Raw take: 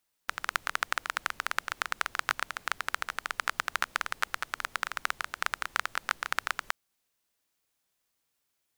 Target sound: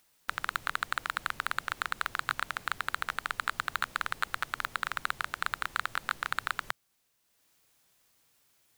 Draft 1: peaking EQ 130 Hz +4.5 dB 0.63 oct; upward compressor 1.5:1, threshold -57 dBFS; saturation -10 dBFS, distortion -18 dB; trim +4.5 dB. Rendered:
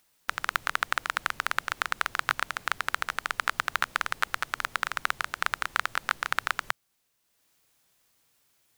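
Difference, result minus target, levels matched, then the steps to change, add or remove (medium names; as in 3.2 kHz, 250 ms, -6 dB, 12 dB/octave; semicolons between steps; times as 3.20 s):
saturation: distortion -10 dB
change: saturation -19.5 dBFS, distortion -8 dB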